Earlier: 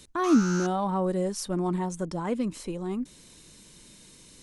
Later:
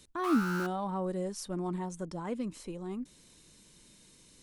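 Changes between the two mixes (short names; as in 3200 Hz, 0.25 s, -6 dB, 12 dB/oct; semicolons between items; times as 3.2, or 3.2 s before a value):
speech -7.0 dB; background: remove synth low-pass 6300 Hz, resonance Q 9.6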